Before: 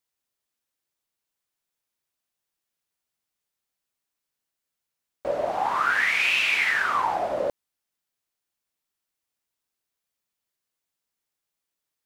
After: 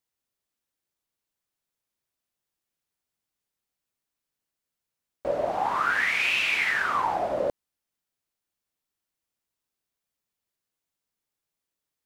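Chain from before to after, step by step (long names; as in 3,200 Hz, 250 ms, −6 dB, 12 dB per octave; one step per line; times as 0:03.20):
low-shelf EQ 490 Hz +5 dB
level −2.5 dB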